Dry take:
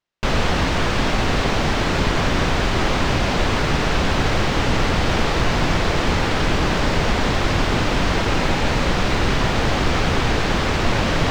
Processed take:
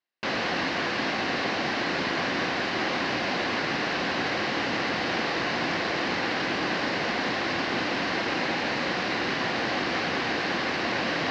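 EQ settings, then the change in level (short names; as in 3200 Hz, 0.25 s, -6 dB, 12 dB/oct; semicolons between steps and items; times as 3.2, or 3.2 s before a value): speaker cabinet 360–4700 Hz, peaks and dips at 430 Hz -8 dB, 610 Hz -6 dB, 910 Hz -7 dB, 1300 Hz -8 dB, 2400 Hz -4 dB, 3400 Hz -8 dB; 0.0 dB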